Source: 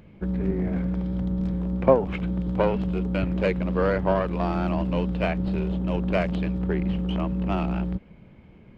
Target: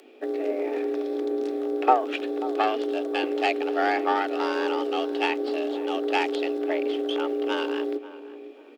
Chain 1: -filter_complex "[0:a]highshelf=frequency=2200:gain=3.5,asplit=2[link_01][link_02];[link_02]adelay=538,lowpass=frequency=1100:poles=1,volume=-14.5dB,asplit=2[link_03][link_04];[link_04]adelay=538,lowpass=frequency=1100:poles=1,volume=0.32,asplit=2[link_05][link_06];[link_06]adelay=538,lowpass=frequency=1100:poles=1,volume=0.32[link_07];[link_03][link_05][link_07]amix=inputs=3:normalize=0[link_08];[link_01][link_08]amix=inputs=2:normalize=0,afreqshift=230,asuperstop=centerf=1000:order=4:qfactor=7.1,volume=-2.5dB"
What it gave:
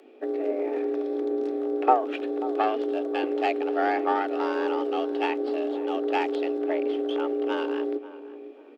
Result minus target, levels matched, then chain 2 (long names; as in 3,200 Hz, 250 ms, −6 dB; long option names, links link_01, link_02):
4,000 Hz band −6.0 dB
-filter_complex "[0:a]highshelf=frequency=2200:gain=14,asplit=2[link_01][link_02];[link_02]adelay=538,lowpass=frequency=1100:poles=1,volume=-14.5dB,asplit=2[link_03][link_04];[link_04]adelay=538,lowpass=frequency=1100:poles=1,volume=0.32,asplit=2[link_05][link_06];[link_06]adelay=538,lowpass=frequency=1100:poles=1,volume=0.32[link_07];[link_03][link_05][link_07]amix=inputs=3:normalize=0[link_08];[link_01][link_08]amix=inputs=2:normalize=0,afreqshift=230,asuperstop=centerf=1000:order=4:qfactor=7.1,volume=-2.5dB"